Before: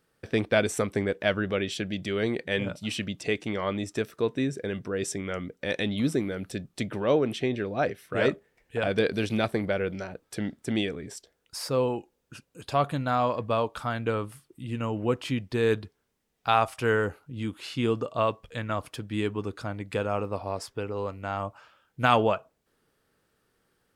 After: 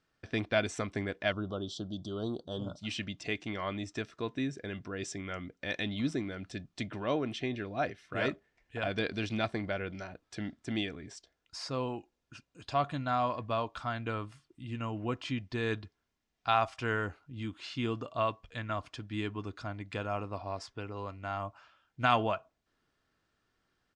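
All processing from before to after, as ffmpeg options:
ffmpeg -i in.wav -filter_complex "[0:a]asettb=1/sr,asplit=3[link_01][link_02][link_03];[link_01]atrim=end=1.324[link_04];[link_02]atrim=start=1.32:end=2.79,asetpts=PTS-STARTPTS,afade=type=in:duration=0.004:curve=qsin,afade=type=out:start_time=1.466:duration=0.004:curve=qsin,asuperstop=centerf=2100:order=8:qfactor=1,highshelf=frequency=8800:gain=-6.5[link_05];[link_03]atrim=start=2.786[link_06];[link_04][link_05]acrossfade=duration=0.004:curve1=hsin:curve2=qsin[link_07];[link_07][link_06]acrossfade=duration=0.004:curve1=qsin:curve2=hsin,lowpass=frequency=6800:width=0.5412,lowpass=frequency=6800:width=1.3066,equalizer=frequency=420:width_type=o:width=0.73:gain=-7.5,aecho=1:1:2.9:0.3,volume=-4.5dB" out.wav

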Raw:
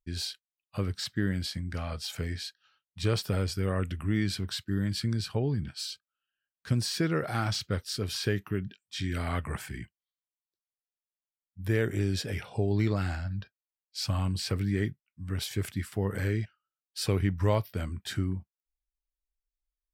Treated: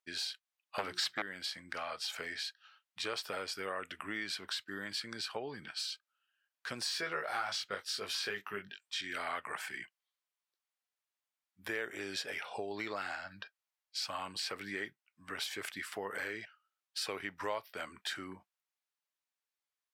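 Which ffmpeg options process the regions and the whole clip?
ffmpeg -i in.wav -filter_complex "[0:a]asettb=1/sr,asplit=3[link_01][link_02][link_03];[link_01]atrim=end=0.784[link_04];[link_02]atrim=start=0.78:end=1.22,asetpts=PTS-STARTPTS,afade=type=in:duration=0.004:curve=qsin,afade=type=out:start_time=0.436:duration=0.004:curve=qsin,bandreject=frequency=60:width_type=h:width=6,bandreject=frequency=120:width_type=h:width=6,bandreject=frequency=180:width_type=h:width=6,bandreject=frequency=240:width_type=h:width=6,bandreject=frequency=300:width_type=h:width=6,bandreject=frequency=360:width_type=h:width=6,aeval=exprs='0.158*sin(PI/2*2.24*val(0)/0.158)':channel_layout=same[link_05];[link_03]atrim=start=1.216[link_06];[link_04][link_05]acrossfade=duration=0.004:curve1=hsin:curve2=qsin[link_07];[link_07][link_06]acrossfade=duration=0.004:curve1=qsin:curve2=hsin,asettb=1/sr,asplit=3[link_08][link_09][link_10];[link_08]atrim=end=6.844[link_11];[link_09]atrim=start=6.84:end=9.01,asetpts=PTS-STARTPTS,afade=type=in:duration=0.004:curve=qsin,afade=type=out:start_time=2.166:duration=0.004:curve=qsin,bandreject=frequency=310:width=7,asplit=2[link_12][link_13];[link_13]adelay=20,volume=-3dB[link_14];[link_12][link_14]amix=inputs=2:normalize=0,atrim=end_sample=95697[link_15];[link_10]atrim=start=9.006[link_16];[link_11][link_15]acrossfade=duration=0.004:curve1=hsin:curve2=qsin[link_17];[link_17][link_16]acrossfade=duration=0.004:curve1=qsin:curve2=hsin,highpass=760,aemphasis=mode=reproduction:type=cd,acompressor=threshold=-46dB:ratio=2.5,volume=7.5dB" out.wav

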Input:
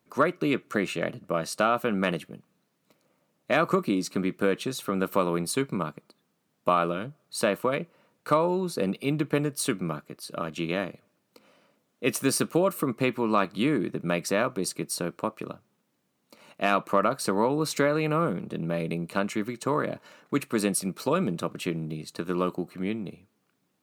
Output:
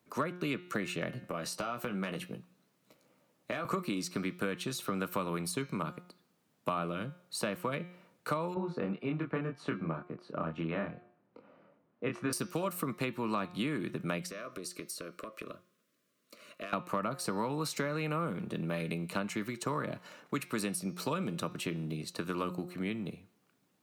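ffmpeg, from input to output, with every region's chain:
ffmpeg -i in.wav -filter_complex "[0:a]asettb=1/sr,asplit=3[link_01][link_02][link_03];[link_01]atrim=end=1.134[link_04];[link_02]atrim=start=1.13:end=3.65,asetpts=PTS-STARTPTS,afade=type=in:duration=0.004:curve=qsin,afade=type=out:start_time=2.516:duration=0.004:curve=qsin,acompressor=threshold=-31dB:ratio=3:attack=3.2:release=140:knee=1:detection=peak,asplit=2[link_05][link_06];[link_06]adelay=16,volume=-7dB[link_07];[link_05][link_07]amix=inputs=2:normalize=0,atrim=end_sample=111132[link_08];[link_03]atrim=start=3.646[link_09];[link_04][link_08]acrossfade=duration=0.004:curve1=hsin:curve2=qsin[link_10];[link_10][link_09]acrossfade=duration=0.004:curve1=qsin:curve2=hsin,asettb=1/sr,asplit=3[link_11][link_12][link_13];[link_11]atrim=end=8.544[link_14];[link_12]atrim=start=8.54:end=12.33,asetpts=PTS-STARTPTS,afade=type=in:duration=0.004:curve=qsin,afade=type=out:start_time=3.786:duration=0.004:curve=qsin,lowpass=1400,asplit=2[link_15][link_16];[link_16]adelay=25,volume=-3.5dB[link_17];[link_15][link_17]amix=inputs=2:normalize=0,atrim=end_sample=167139[link_18];[link_13]atrim=start=12.326[link_19];[link_14][link_18]acrossfade=duration=0.004:curve1=hsin:curve2=qsin[link_20];[link_20][link_19]acrossfade=duration=0.004:curve1=qsin:curve2=hsin,asettb=1/sr,asplit=3[link_21][link_22][link_23];[link_21]atrim=end=14.264[link_24];[link_22]atrim=start=14.26:end=16.73,asetpts=PTS-STARTPTS,afade=type=in:duration=0.004:curve=qsin,afade=type=out:start_time=2.466:duration=0.004:curve=qsin,equalizer=frequency=110:width_type=o:width=2.7:gain=-9,acompressor=threshold=-36dB:ratio=10:attack=3.2:release=140:knee=1:detection=peak,asuperstop=centerf=830:order=20:qfactor=2.6[link_25];[link_23]atrim=start=16.726[link_26];[link_24][link_25]acrossfade=duration=0.004:curve1=hsin:curve2=qsin[link_27];[link_27][link_26]acrossfade=duration=0.004:curve1=qsin:curve2=hsin,bandreject=frequency=178.6:width_type=h:width=4,bandreject=frequency=357.2:width_type=h:width=4,bandreject=frequency=535.8:width_type=h:width=4,bandreject=frequency=714.4:width_type=h:width=4,bandreject=frequency=893:width_type=h:width=4,bandreject=frequency=1071.6:width_type=h:width=4,bandreject=frequency=1250.2:width_type=h:width=4,bandreject=frequency=1428.8:width_type=h:width=4,bandreject=frequency=1607.4:width_type=h:width=4,bandreject=frequency=1786:width_type=h:width=4,bandreject=frequency=1964.6:width_type=h:width=4,bandreject=frequency=2143.2:width_type=h:width=4,bandreject=frequency=2321.8:width_type=h:width=4,bandreject=frequency=2500.4:width_type=h:width=4,bandreject=frequency=2679:width_type=h:width=4,bandreject=frequency=2857.6:width_type=h:width=4,bandreject=frequency=3036.2:width_type=h:width=4,bandreject=frequency=3214.8:width_type=h:width=4,bandreject=frequency=3393.4:width_type=h:width=4,bandreject=frequency=3572:width_type=h:width=4,bandreject=frequency=3750.6:width_type=h:width=4,bandreject=frequency=3929.2:width_type=h:width=4,bandreject=frequency=4107.8:width_type=h:width=4,bandreject=frequency=4286.4:width_type=h:width=4,bandreject=frequency=4465:width_type=h:width=4,bandreject=frequency=4643.6:width_type=h:width=4,bandreject=frequency=4822.2:width_type=h:width=4,bandreject=frequency=5000.8:width_type=h:width=4,bandreject=frequency=5179.4:width_type=h:width=4,bandreject=frequency=5358:width_type=h:width=4,bandreject=frequency=5536.6:width_type=h:width=4,bandreject=frequency=5715.2:width_type=h:width=4,bandreject=frequency=5893.8:width_type=h:width=4,bandreject=frequency=6072.4:width_type=h:width=4,bandreject=frequency=6251:width_type=h:width=4,bandreject=frequency=6429.6:width_type=h:width=4,acrossover=split=200|1000[link_28][link_29][link_30];[link_28]acompressor=threshold=-39dB:ratio=4[link_31];[link_29]acompressor=threshold=-38dB:ratio=4[link_32];[link_30]acompressor=threshold=-37dB:ratio=4[link_33];[link_31][link_32][link_33]amix=inputs=3:normalize=0" out.wav

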